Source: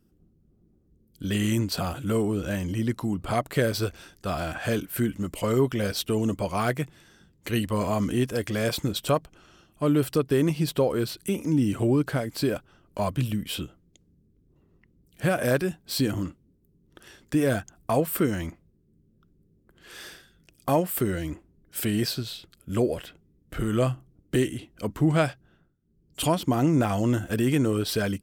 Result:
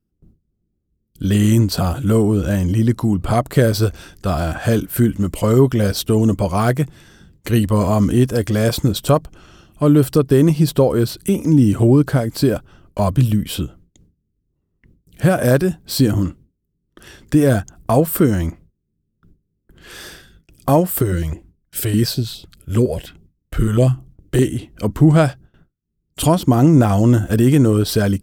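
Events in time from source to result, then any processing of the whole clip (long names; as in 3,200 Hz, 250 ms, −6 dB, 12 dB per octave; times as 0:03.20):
0:21.02–0:24.42: notch on a step sequencer 9.8 Hz 220–1,700 Hz
whole clip: dynamic equaliser 2,400 Hz, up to −6 dB, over −47 dBFS, Q 1.2; noise gate with hold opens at −50 dBFS; low-shelf EQ 150 Hz +8 dB; level +8 dB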